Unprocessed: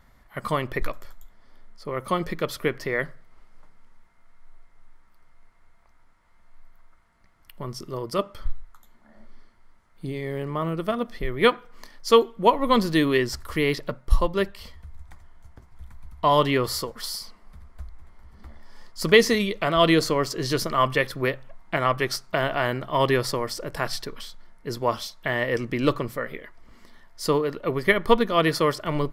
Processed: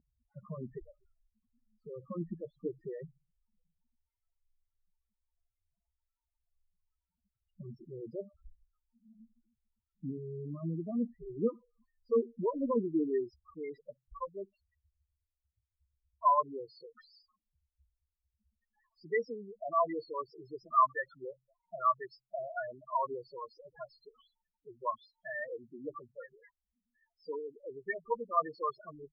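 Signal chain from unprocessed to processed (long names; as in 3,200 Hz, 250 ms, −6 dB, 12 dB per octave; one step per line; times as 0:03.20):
spectral peaks only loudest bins 4
band-pass filter sweep 230 Hz → 1,200 Hz, 0:12.32–0:13.68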